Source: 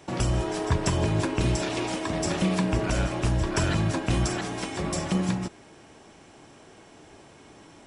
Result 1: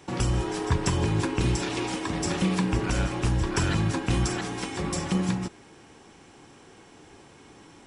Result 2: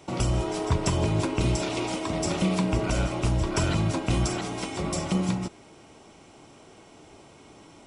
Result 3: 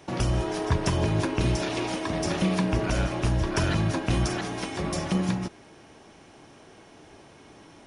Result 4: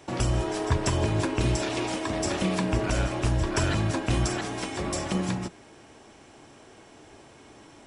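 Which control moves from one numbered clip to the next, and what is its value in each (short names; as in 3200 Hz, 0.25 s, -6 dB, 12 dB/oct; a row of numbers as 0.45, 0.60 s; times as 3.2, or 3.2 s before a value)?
notch, frequency: 630, 1700, 7700, 170 Hz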